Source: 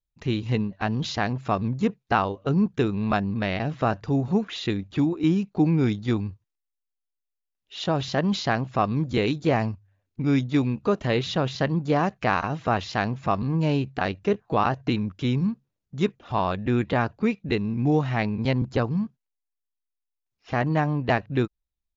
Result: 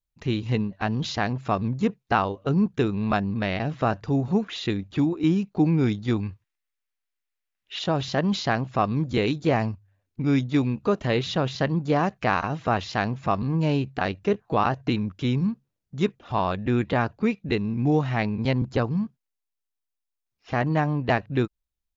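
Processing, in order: 6.23–7.79 s: peaking EQ 2 kHz +10.5 dB 1.6 oct

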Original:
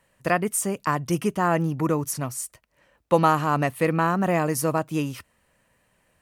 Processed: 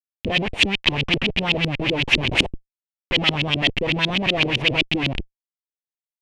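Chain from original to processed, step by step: Schmitt trigger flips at -31 dBFS; resonant high shelf 1.9 kHz +12 dB, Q 3; LFO low-pass saw up 7.9 Hz 270–3600 Hz

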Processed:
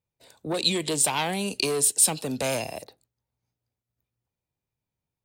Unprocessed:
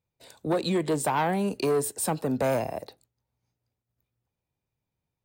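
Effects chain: 0.54–2.84 s: high-order bell 5.5 kHz +15 dB 2.7 oct; trim -3 dB

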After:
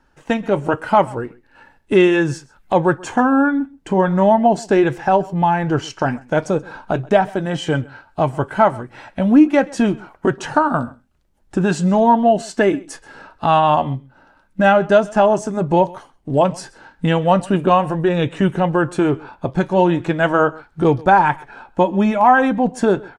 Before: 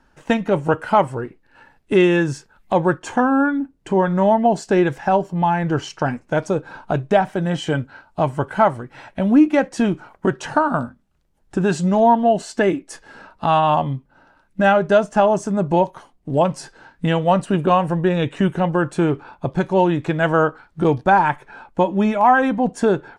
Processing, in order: flange 0.38 Hz, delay 2.2 ms, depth 1.7 ms, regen -79%; level rider gain up to 3.5 dB; delay 130 ms -23 dB; trim +3 dB

